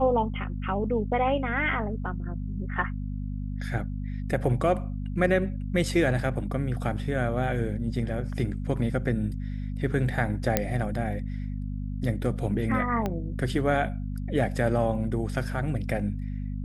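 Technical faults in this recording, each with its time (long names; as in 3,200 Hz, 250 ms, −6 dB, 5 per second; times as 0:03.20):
mains hum 50 Hz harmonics 5 −32 dBFS
0:10.57: click −6 dBFS
0:13.06: click −16 dBFS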